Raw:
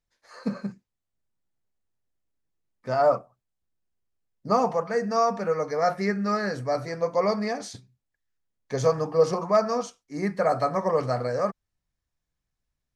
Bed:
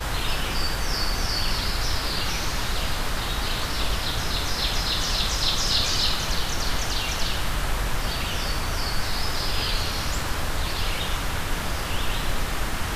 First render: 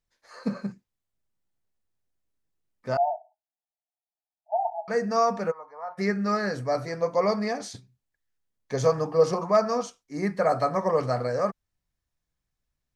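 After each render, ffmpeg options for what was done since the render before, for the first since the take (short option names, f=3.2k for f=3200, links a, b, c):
-filter_complex "[0:a]asettb=1/sr,asplit=3[a][b][c];[a]atrim=end=2.974[d];[b]atrim=start=2.97:end=4.88,asetpts=PTS-STARTPTS,afade=t=in:d=0.004:c=qsin,afade=t=out:st=1.906:d=0.004:c=qsin,asuperpass=centerf=750:order=20:qfactor=2.6[e];[c]atrim=start=4.876[f];[d][e]acrossfade=d=0.004:c1=hsin:c2=qsin[g];[g][f]acrossfade=d=0.004:c1=qsin:c2=hsin,asplit=3[h][i][j];[h]afade=t=out:st=5.5:d=0.02[k];[i]bandpass=f=960:t=q:w=6.9,afade=t=in:st=5.5:d=0.02,afade=t=out:st=5.97:d=0.02[l];[j]afade=t=in:st=5.97:d=0.02[m];[k][l][m]amix=inputs=3:normalize=0"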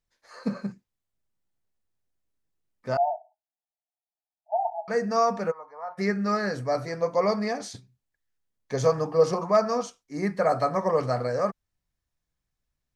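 -af anull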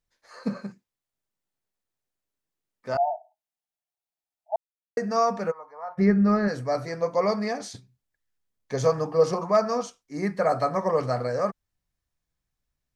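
-filter_complex "[0:a]asettb=1/sr,asplit=3[a][b][c];[a]atrim=end=0.624[d];[b]atrim=start=0.62:end=2.95,asetpts=PTS-STARTPTS,afade=t=in:d=0.004:c=qsin,afade=t=out:st=2.326:d=0.004:c=qsin,lowshelf=f=160:g=-10.5[e];[c]atrim=start=2.946[f];[d][e]acrossfade=d=0.004:c1=hsin:c2=qsin[g];[g][f]acrossfade=d=0.004:c1=qsin:c2=hsin,asplit=3[h][i][j];[h]afade=t=out:st=5.95:d=0.02[k];[i]aemphasis=mode=reproduction:type=riaa,afade=t=in:st=5.95:d=0.02,afade=t=out:st=6.47:d=0.02[l];[j]afade=t=in:st=6.47:d=0.02[m];[k][l][m]amix=inputs=3:normalize=0,asplit=3[n][o][p];[n]atrim=end=4.56,asetpts=PTS-STARTPTS,afade=t=out:st=4.556:d=0.004:c=hsin[q];[o]atrim=start=4.56:end=4.97,asetpts=PTS-STARTPTS,volume=0[r];[p]atrim=start=4.97,asetpts=PTS-STARTPTS,afade=t=in:d=0.004:c=hsin[s];[q][r][s]concat=n=3:v=0:a=1"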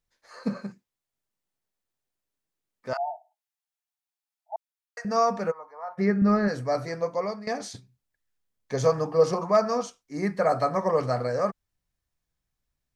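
-filter_complex "[0:a]asettb=1/sr,asplit=3[a][b][c];[a]atrim=end=2.934[d];[b]atrim=start=2.93:end=5.05,asetpts=PTS-STARTPTS,afade=t=in:d=0.004:c=qsin,afade=t=out:st=2.116:d=0.004:c=qsin,highpass=f=820:w=0.5412,highpass=f=820:w=1.3066[e];[c]atrim=start=5.046[f];[d][e]acrossfade=d=0.004:c1=hsin:c2=qsin[g];[g][f]acrossfade=d=0.004:c1=qsin:c2=hsin,asettb=1/sr,asplit=3[h][i][j];[h]atrim=end=5.674[k];[i]atrim=start=5.67:end=6.22,asetpts=PTS-STARTPTS,afade=t=in:d=0.004:c=qsin,afade=t=out:st=0.546:d=0.004:c=qsin,highpass=f=270:p=1[l];[j]atrim=start=6.216[m];[k][l]acrossfade=d=0.004:c1=hsin:c2=qsin[n];[n][m]acrossfade=d=0.004:c1=qsin:c2=hsin,asplit=2[o][p];[o]atrim=end=7.47,asetpts=PTS-STARTPTS,afade=t=out:st=6.91:d=0.56:silence=0.16788[q];[p]atrim=start=7.47,asetpts=PTS-STARTPTS,afade=t=in:d=0.004:c=hsin:silence=0.16788[r];[q][r]concat=n=2:v=0:a=1"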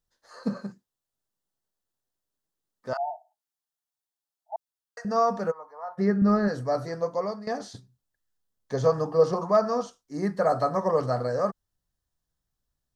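-filter_complex "[0:a]acrossover=split=4400[a][b];[b]acompressor=threshold=-49dB:ratio=4:attack=1:release=60[c];[a][c]amix=inputs=2:normalize=0,equalizer=f=2.3k:t=o:w=0.4:g=-12.5"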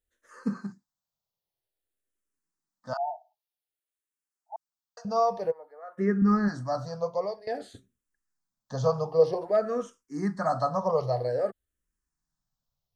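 -filter_complex "[0:a]asplit=2[a][b];[b]afreqshift=-0.52[c];[a][c]amix=inputs=2:normalize=1"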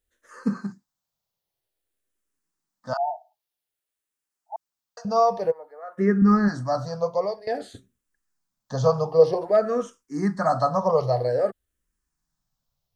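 -af "volume=5dB"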